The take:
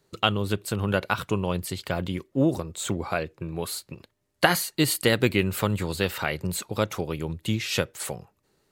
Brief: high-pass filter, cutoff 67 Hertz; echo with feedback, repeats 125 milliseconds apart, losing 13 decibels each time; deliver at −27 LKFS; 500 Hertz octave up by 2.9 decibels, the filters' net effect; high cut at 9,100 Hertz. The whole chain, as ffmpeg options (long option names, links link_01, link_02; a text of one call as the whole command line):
ffmpeg -i in.wav -af "highpass=67,lowpass=9100,equalizer=frequency=500:width_type=o:gain=3.5,aecho=1:1:125|250|375:0.224|0.0493|0.0108,volume=-1dB" out.wav